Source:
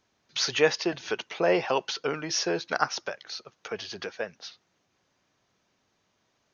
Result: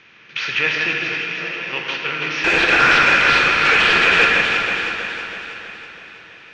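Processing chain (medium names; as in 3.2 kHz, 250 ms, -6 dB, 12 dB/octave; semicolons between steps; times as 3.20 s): spectral levelling over time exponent 0.6; FFT filter 150 Hz 0 dB, 700 Hz -12 dB, 2.5 kHz +13 dB, 4.7 kHz -5 dB; 0.93–1.73 s: compression 4:1, threshold -29 dBFS, peak gain reduction 11.5 dB; 2.44–4.25 s: overdrive pedal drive 33 dB, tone 2.3 kHz, clips at -4.5 dBFS; distance through air 120 m; echo whose repeats swap between lows and highs 162 ms, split 2.2 kHz, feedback 75%, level -3.5 dB; plate-style reverb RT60 3.3 s, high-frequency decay 0.9×, DRR 0.5 dB; trim -1 dB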